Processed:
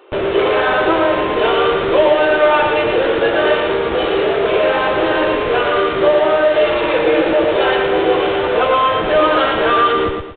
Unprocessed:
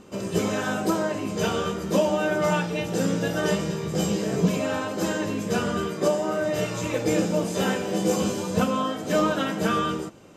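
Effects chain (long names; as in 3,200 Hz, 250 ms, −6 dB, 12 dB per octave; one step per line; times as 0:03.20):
elliptic high-pass filter 350 Hz, stop band 40 dB
in parallel at −1 dB: comparator with hysteresis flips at −37.5 dBFS
on the sum: repeating echo 114 ms, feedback 36%, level −4 dB
level +7.5 dB
G.726 40 kbit/s 8,000 Hz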